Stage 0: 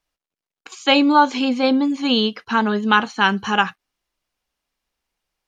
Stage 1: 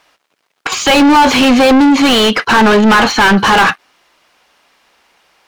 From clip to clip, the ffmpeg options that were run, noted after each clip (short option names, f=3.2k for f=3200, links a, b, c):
-filter_complex "[0:a]asplit=2[a][b];[b]highpass=f=720:p=1,volume=37dB,asoftclip=type=tanh:threshold=-2dB[c];[a][c]amix=inputs=2:normalize=0,lowpass=f=2.1k:p=1,volume=-6dB,volume=1.5dB"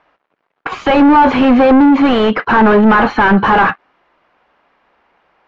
-af "lowpass=1.6k"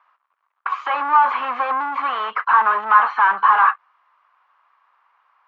-filter_complex "[0:a]acrossover=split=3500[a][b];[b]acompressor=threshold=-47dB:ratio=4:attack=1:release=60[c];[a][c]amix=inputs=2:normalize=0,highpass=f=1.1k:t=q:w=5,volume=-10.5dB"